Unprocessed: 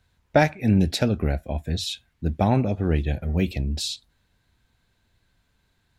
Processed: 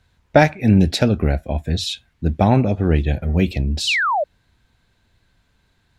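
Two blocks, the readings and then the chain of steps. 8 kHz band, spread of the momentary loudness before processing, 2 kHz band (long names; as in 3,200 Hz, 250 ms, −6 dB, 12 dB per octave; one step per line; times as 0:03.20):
+3.5 dB, 9 LU, +9.0 dB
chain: high-shelf EQ 11,000 Hz −9 dB
sound drawn into the spectrogram fall, 0:03.87–0:04.24, 550–3,200 Hz −24 dBFS
level +5.5 dB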